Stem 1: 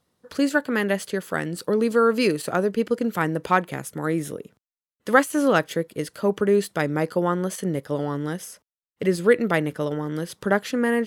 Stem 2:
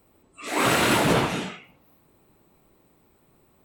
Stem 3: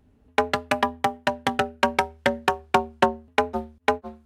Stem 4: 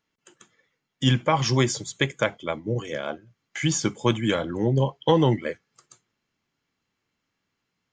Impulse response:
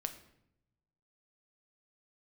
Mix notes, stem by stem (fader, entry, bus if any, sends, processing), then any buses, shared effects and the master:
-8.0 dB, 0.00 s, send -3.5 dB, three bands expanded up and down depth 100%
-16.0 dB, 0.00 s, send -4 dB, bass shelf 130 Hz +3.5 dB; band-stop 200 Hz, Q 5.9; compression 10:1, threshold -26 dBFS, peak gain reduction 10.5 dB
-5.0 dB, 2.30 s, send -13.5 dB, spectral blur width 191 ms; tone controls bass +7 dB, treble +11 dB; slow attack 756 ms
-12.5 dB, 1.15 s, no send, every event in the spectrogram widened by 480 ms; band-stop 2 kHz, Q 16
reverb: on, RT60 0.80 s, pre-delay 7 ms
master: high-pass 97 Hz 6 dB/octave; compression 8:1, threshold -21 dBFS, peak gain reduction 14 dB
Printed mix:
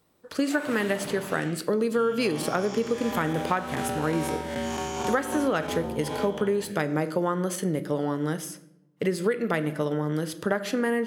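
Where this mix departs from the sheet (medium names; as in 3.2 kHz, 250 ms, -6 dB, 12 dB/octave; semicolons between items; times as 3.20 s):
stem 1: missing three bands expanded up and down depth 100%; stem 4 -12.5 dB -> -22.5 dB; reverb return +9.5 dB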